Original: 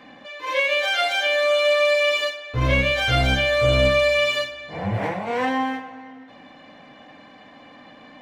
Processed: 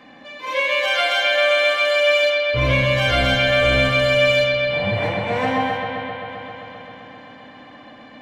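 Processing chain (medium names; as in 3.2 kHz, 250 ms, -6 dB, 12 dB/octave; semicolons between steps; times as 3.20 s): bucket-brigade echo 131 ms, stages 4096, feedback 82%, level -5 dB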